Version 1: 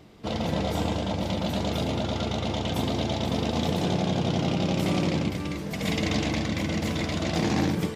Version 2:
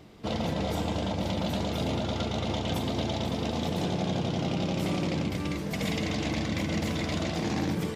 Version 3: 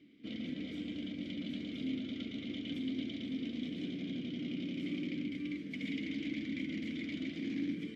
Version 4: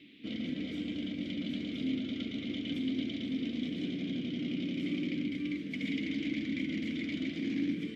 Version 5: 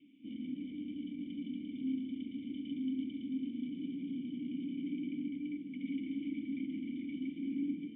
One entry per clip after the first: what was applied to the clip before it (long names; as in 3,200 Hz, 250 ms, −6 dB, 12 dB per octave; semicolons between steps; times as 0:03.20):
brickwall limiter −20.5 dBFS, peak gain reduction 8 dB
formant filter i; level +1.5 dB
noise in a band 2,000–3,700 Hz −66 dBFS; level +4 dB
formant resonators in series i; level −1.5 dB